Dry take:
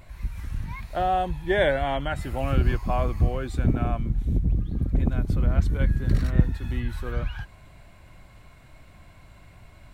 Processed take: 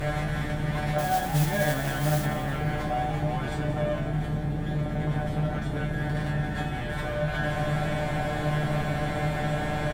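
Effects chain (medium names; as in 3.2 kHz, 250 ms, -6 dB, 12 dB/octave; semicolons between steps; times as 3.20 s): spectral levelling over time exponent 0.4; in parallel at +2.5 dB: compressor with a negative ratio -23 dBFS, ratio -0.5; on the sum: one-sided clip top -11.5 dBFS; feedback comb 150 Hz, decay 0.27 s, harmonics all, mix 100%; 0.98–2.26 s: modulation noise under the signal 13 dB; on a send: frequency-shifting echo 180 ms, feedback 51%, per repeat +62 Hz, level -12 dB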